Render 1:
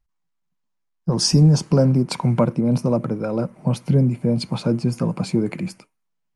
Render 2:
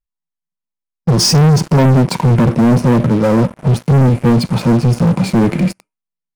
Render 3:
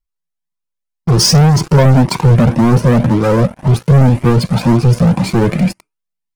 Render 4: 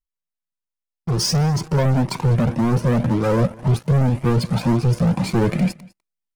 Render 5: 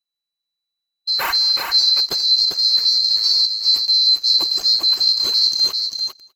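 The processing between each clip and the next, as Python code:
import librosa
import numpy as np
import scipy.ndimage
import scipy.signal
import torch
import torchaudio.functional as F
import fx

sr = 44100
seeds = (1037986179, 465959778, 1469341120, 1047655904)

y1 = fx.hpss(x, sr, part='percussive', gain_db=-13)
y1 = fx.leveller(y1, sr, passes=5)
y2 = fx.comb_cascade(y1, sr, direction='rising', hz=1.9)
y2 = y2 * librosa.db_to_amplitude(6.0)
y3 = fx.rider(y2, sr, range_db=10, speed_s=0.5)
y3 = y3 + 10.0 ** (-23.5 / 20.0) * np.pad(y3, (int(200 * sr / 1000.0), 0))[:len(y3)]
y3 = y3 * librosa.db_to_amplitude(-8.0)
y4 = fx.band_swap(y3, sr, width_hz=4000)
y4 = y4 + 10.0 ** (-5.0 / 20.0) * np.pad(y4, (int(397 * sr / 1000.0), 0))[:len(y4)]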